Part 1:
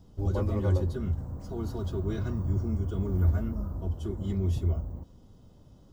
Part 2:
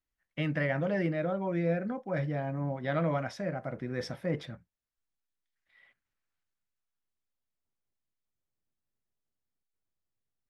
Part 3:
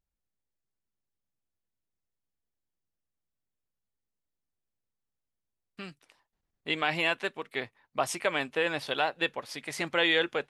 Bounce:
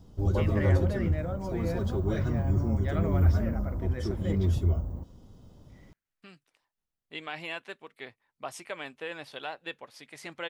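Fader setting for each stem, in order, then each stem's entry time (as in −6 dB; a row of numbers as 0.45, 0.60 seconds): +2.0, −4.5, −9.5 decibels; 0.00, 0.00, 0.45 seconds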